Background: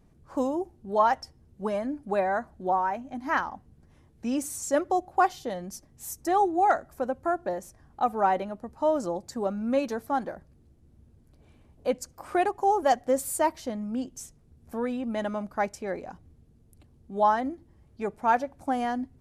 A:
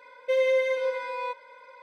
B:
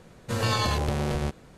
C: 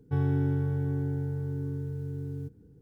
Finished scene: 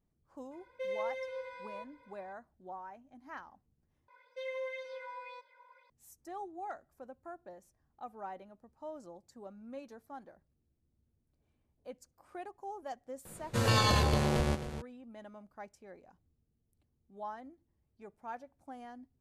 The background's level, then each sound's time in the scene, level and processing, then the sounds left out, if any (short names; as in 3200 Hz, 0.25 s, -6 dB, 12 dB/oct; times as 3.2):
background -20 dB
0.51 add A -14 dB
4.08 replace with A -18 dB + LFO bell 1.9 Hz 860–5400 Hz +12 dB
13.25 add B -1.5 dB + echo 0.264 s -12 dB
not used: C